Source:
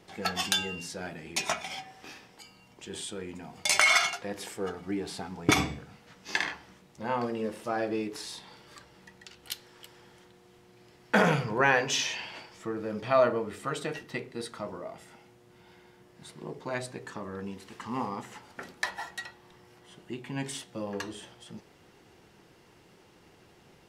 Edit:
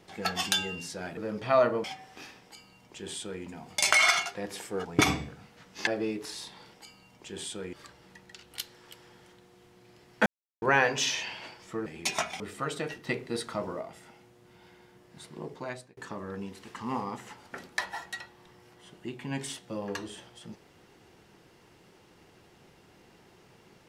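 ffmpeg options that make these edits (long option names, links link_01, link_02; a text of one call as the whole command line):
ffmpeg -i in.wav -filter_complex "[0:a]asplit=14[link_01][link_02][link_03][link_04][link_05][link_06][link_07][link_08][link_09][link_10][link_11][link_12][link_13][link_14];[link_01]atrim=end=1.172[link_15];[link_02]atrim=start=12.778:end=13.452[link_16];[link_03]atrim=start=1.708:end=4.722[link_17];[link_04]atrim=start=5.348:end=6.372[link_18];[link_05]atrim=start=7.778:end=8.652[link_19];[link_06]atrim=start=2.308:end=3.302[link_20];[link_07]atrim=start=8.648:end=11.18,asetpts=PTS-STARTPTS,afade=type=out:start_time=2.528:duration=0.004:curve=hsin[link_21];[link_08]atrim=start=11.18:end=11.54,asetpts=PTS-STARTPTS,volume=0[link_22];[link_09]atrim=start=11.54:end=12.782,asetpts=PTS-STARTPTS,afade=type=in:duration=0.004:curve=hsin[link_23];[link_10]atrim=start=1.168:end=1.712[link_24];[link_11]atrim=start=13.448:end=14.122[link_25];[link_12]atrim=start=14.118:end=14.862,asetpts=PTS-STARTPTS,volume=4dB[link_26];[link_13]atrim=start=14.858:end=17.02,asetpts=PTS-STARTPTS,afade=type=out:start_time=1.712:duration=0.45[link_27];[link_14]atrim=start=17.02,asetpts=PTS-STARTPTS,afade=type=in:duration=0.004:curve=hsin[link_28];[link_15][link_16]acrossfade=duration=0.004:curve1=hsin:curve2=hsin[link_29];[link_29][link_17]acrossfade=duration=0.004:curve1=hsin:curve2=hsin[link_30];[link_30][link_18]acrossfade=duration=0.004:curve1=hsin:curve2=hsin[link_31];[link_31][link_19]acrossfade=duration=0.004:curve1=hsin:curve2=hsin[link_32];[link_32][link_20]acrossfade=duration=0.004:curve1=hsin:curve2=hsin[link_33];[link_21][link_22][link_23]concat=n=3:v=0:a=1[link_34];[link_33][link_34]acrossfade=duration=0.004:curve1=hsin:curve2=hsin[link_35];[link_35][link_24]acrossfade=duration=0.004:curve1=hsin:curve2=hsin[link_36];[link_36][link_25]acrossfade=duration=0.004:curve1=hsin:curve2=hsin[link_37];[link_37][link_26]acrossfade=duration=0.004:curve1=hsin:curve2=hsin[link_38];[link_27][link_28]concat=n=2:v=0:a=1[link_39];[link_38][link_39]acrossfade=duration=0.004:curve1=hsin:curve2=hsin" out.wav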